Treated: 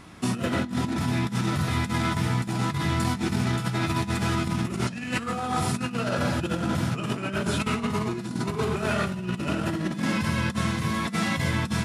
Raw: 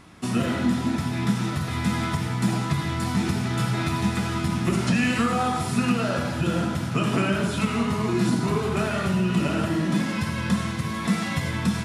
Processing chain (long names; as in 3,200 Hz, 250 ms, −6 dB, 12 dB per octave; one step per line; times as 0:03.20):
compressor whose output falls as the input rises −26 dBFS, ratio −0.5